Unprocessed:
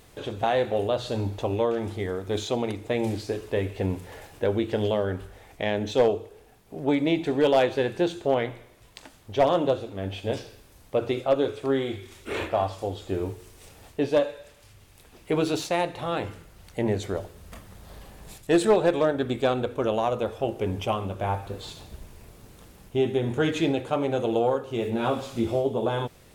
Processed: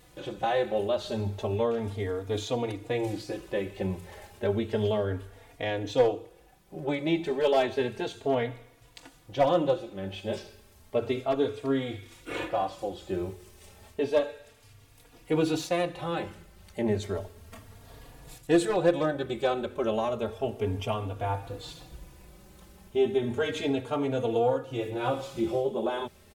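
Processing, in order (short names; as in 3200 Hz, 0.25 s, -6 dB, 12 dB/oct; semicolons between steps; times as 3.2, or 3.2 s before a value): endless flanger 3.6 ms +0.32 Hz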